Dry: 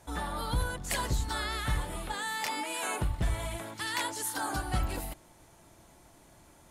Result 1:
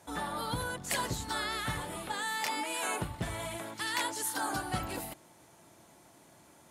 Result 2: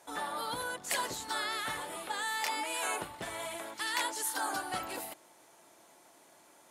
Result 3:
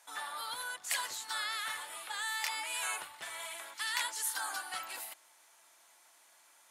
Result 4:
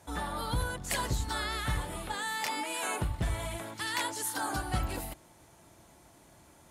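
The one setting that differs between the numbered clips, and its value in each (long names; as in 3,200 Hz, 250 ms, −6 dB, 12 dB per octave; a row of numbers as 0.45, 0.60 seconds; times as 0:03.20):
high-pass filter, corner frequency: 130, 370, 1,200, 50 Hertz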